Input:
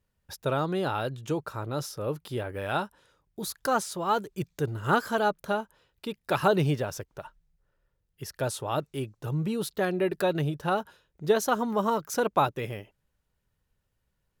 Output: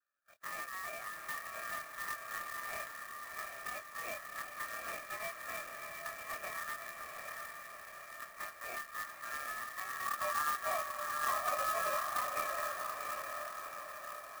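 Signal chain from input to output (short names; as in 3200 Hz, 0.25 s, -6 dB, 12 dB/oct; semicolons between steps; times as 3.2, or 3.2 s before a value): short-time reversal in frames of 53 ms; treble ducked by the level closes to 1300 Hz, closed at -24.5 dBFS; vowel filter u; tilt -2.5 dB/oct; compressor, threshold -43 dBFS, peak gain reduction 15.5 dB; one-sided clip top -44.5 dBFS; ring modulator 1500 Hz; spectral gain 10.06–12.24, 520–1700 Hz +10 dB; diffused feedback echo 0.753 s, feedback 59%, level -3.5 dB; clock jitter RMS 0.043 ms; gain +7 dB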